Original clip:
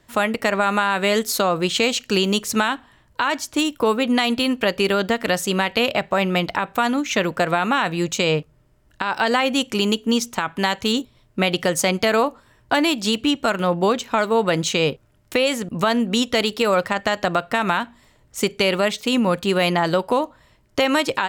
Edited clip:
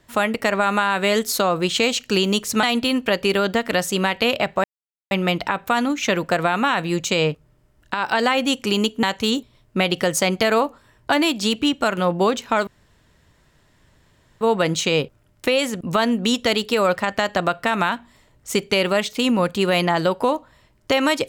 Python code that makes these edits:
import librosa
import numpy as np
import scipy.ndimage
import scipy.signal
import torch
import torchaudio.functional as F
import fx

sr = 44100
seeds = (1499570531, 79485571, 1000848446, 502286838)

y = fx.edit(x, sr, fx.cut(start_s=2.63, length_s=1.55),
    fx.insert_silence(at_s=6.19, length_s=0.47),
    fx.cut(start_s=10.11, length_s=0.54),
    fx.insert_room_tone(at_s=14.29, length_s=1.74), tone=tone)